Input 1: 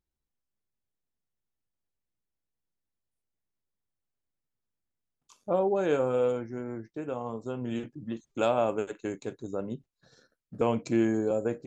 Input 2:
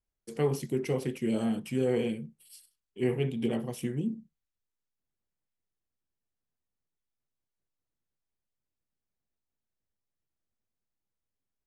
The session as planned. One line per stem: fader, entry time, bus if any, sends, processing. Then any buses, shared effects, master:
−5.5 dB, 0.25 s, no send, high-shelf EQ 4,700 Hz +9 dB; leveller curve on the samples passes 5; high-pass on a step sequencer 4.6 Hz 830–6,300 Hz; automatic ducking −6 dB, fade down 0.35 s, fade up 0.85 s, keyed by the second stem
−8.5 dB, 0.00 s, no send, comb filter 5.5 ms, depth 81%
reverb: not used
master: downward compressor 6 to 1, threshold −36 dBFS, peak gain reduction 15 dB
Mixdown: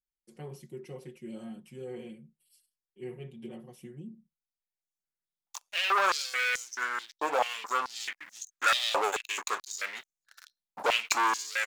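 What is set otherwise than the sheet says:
stem 2 −8.5 dB → −15.5 dB
master: missing downward compressor 6 to 1, threshold −36 dBFS, peak gain reduction 15 dB

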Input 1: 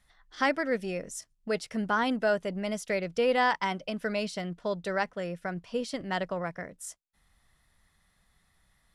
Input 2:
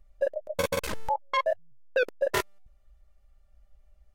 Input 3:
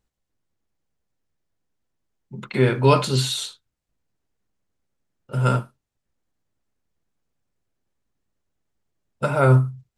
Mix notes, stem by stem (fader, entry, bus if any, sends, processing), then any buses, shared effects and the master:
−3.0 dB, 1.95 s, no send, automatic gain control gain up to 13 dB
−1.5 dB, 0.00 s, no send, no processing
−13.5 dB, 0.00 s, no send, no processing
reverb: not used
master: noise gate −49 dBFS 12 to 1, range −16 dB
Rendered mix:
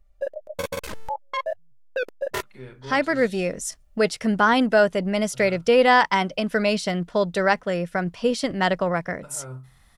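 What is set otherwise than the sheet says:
stem 1: entry 1.95 s → 2.50 s
stem 3 −13.5 dB → −23.0 dB
master: missing noise gate −49 dBFS 12 to 1, range −16 dB

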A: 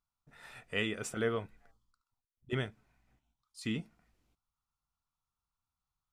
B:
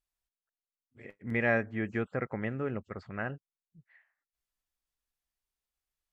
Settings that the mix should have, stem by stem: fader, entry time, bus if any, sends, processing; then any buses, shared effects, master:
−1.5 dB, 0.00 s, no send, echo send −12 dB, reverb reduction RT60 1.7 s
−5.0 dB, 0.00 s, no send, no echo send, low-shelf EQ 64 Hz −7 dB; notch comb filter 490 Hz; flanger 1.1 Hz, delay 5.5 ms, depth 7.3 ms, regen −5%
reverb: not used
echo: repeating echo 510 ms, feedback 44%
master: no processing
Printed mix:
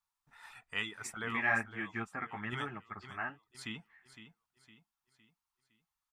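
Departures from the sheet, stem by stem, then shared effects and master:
stem B −5.0 dB → +2.5 dB
master: extra low shelf with overshoot 710 Hz −7.5 dB, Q 3

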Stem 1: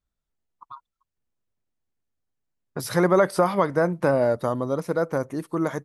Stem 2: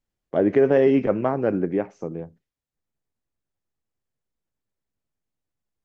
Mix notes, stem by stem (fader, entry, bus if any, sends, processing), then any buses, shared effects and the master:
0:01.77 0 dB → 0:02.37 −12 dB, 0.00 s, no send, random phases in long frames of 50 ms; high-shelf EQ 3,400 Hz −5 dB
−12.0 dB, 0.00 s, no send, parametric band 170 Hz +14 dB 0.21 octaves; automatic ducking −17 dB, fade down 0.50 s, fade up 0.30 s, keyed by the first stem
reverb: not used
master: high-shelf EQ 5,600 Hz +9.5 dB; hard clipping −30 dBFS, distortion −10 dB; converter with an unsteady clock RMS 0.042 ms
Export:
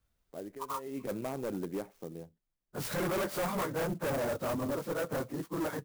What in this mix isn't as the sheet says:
stem 1 0.0 dB → +6.5 dB
stem 2: missing parametric band 170 Hz +14 dB 0.21 octaves

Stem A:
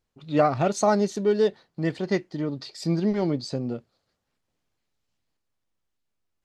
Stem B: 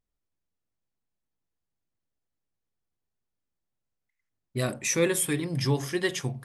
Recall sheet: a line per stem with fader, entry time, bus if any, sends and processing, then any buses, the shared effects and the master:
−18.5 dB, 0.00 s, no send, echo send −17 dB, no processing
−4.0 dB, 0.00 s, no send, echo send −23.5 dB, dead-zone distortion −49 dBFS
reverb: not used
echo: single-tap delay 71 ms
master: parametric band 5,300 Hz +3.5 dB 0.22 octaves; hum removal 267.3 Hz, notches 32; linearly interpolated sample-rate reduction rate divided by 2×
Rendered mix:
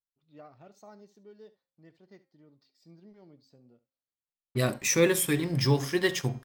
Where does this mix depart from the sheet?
stem A −18.5 dB → −30.0 dB
stem B −4.0 dB → +2.0 dB

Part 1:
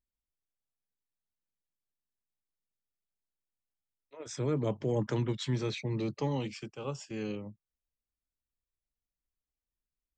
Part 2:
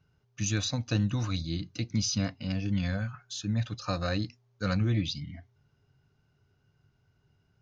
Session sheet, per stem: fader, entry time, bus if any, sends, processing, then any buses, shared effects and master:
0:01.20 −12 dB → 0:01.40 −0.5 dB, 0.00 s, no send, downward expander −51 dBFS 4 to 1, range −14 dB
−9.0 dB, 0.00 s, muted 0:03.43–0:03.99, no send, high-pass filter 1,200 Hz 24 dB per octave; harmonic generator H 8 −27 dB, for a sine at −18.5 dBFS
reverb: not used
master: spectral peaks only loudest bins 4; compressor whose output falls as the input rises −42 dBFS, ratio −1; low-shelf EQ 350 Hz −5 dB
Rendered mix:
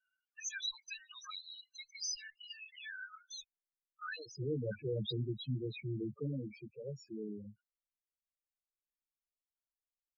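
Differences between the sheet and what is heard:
stem 2 −9.0 dB → +1.0 dB
master: missing compressor whose output falls as the input rises −42 dBFS, ratio −1

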